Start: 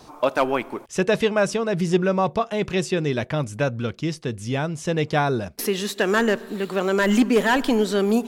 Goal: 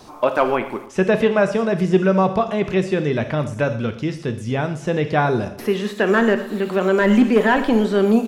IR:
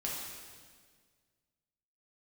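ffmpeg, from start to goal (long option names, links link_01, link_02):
-filter_complex "[0:a]asplit=2[link_01][link_02];[link_02]adelay=116,lowpass=frequency=3700:poles=1,volume=-16.5dB,asplit=2[link_03][link_04];[link_04]adelay=116,lowpass=frequency=3700:poles=1,volume=0.46,asplit=2[link_05][link_06];[link_06]adelay=116,lowpass=frequency=3700:poles=1,volume=0.46,asplit=2[link_07][link_08];[link_08]adelay=116,lowpass=frequency=3700:poles=1,volume=0.46[link_09];[link_01][link_03][link_05][link_07][link_09]amix=inputs=5:normalize=0,asplit=2[link_10][link_11];[1:a]atrim=start_sample=2205,atrim=end_sample=3969[link_12];[link_11][link_12]afir=irnorm=-1:irlink=0,volume=-5.5dB[link_13];[link_10][link_13]amix=inputs=2:normalize=0,acrossover=split=2800[link_14][link_15];[link_15]acompressor=threshold=-42dB:ratio=4:attack=1:release=60[link_16];[link_14][link_16]amix=inputs=2:normalize=0"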